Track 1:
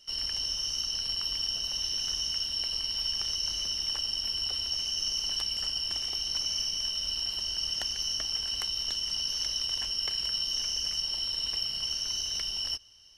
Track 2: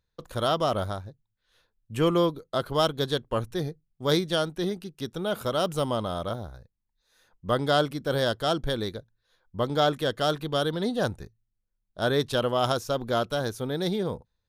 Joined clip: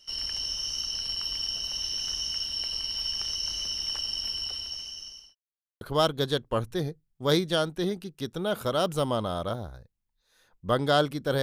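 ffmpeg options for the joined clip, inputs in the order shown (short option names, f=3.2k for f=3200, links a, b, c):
-filter_complex "[0:a]apad=whole_dur=11.42,atrim=end=11.42,asplit=2[a][b];[a]atrim=end=5.35,asetpts=PTS-STARTPTS,afade=t=out:st=4.27:d=1.08[c];[b]atrim=start=5.35:end=5.81,asetpts=PTS-STARTPTS,volume=0[d];[1:a]atrim=start=2.61:end=8.22,asetpts=PTS-STARTPTS,afade=t=in:d=0.004:c=hsin[e];[c][d][e]concat=n=3:v=0:a=1"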